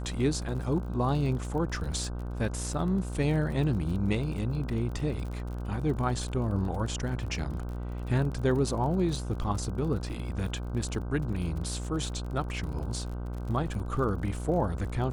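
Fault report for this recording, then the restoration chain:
buzz 60 Hz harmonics 26 -35 dBFS
crackle 38/s -37 dBFS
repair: de-click; de-hum 60 Hz, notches 26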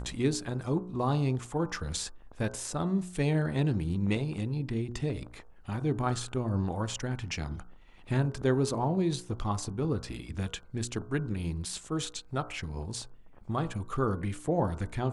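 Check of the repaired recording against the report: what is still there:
none

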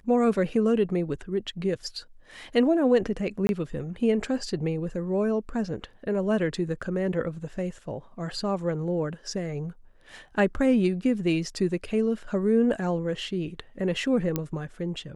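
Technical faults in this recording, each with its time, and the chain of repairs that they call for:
3.47–3.49 gap 21 ms
14.36 pop -12 dBFS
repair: de-click; interpolate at 3.47, 21 ms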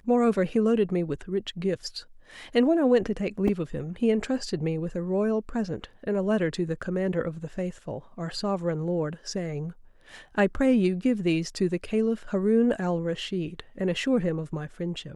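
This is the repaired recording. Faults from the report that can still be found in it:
none

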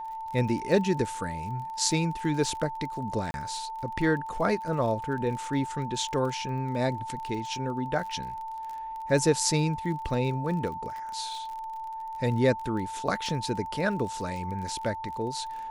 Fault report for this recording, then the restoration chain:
crackle 33/s -36 dBFS
tone 890 Hz -34 dBFS
3.31–3.34 gap 31 ms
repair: de-click; notch 890 Hz, Q 30; interpolate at 3.31, 31 ms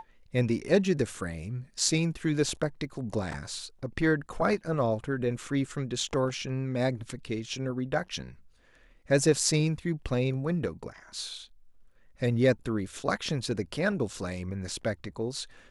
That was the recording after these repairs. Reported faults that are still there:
none

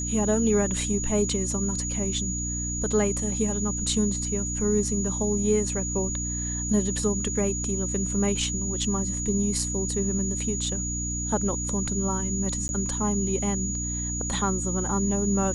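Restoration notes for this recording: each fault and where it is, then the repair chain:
hum 60 Hz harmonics 5 -32 dBFS
tone 6800 Hz -30 dBFS
12.68–12.69 gap 11 ms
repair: de-hum 60 Hz, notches 5; notch 6800 Hz, Q 30; interpolate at 12.68, 11 ms

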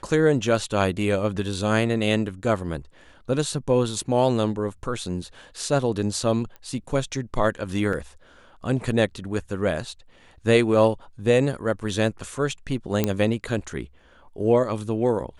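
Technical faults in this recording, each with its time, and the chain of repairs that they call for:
6.56 pop -27 dBFS
7.93 gap 3.2 ms
13.04 pop -7 dBFS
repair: de-click; interpolate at 7.93, 3.2 ms

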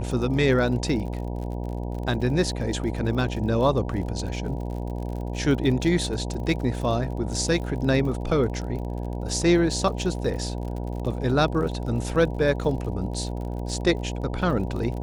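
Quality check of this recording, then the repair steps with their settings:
buzz 60 Hz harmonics 16 -30 dBFS
crackle 48/s -33 dBFS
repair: de-click; de-hum 60 Hz, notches 16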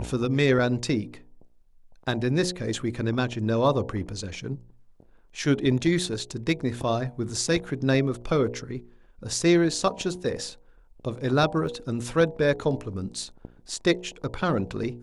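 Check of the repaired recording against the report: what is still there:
none

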